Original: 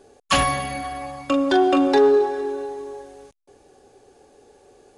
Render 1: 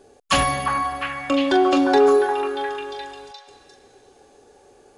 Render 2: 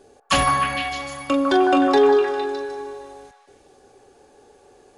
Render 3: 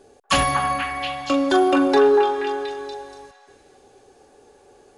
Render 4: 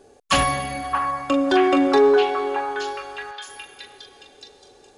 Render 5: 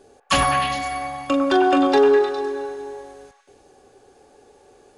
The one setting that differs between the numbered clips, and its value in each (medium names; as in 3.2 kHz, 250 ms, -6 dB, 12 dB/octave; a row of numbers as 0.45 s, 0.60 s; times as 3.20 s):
repeats whose band climbs or falls, time: 352 ms, 153 ms, 239 ms, 623 ms, 102 ms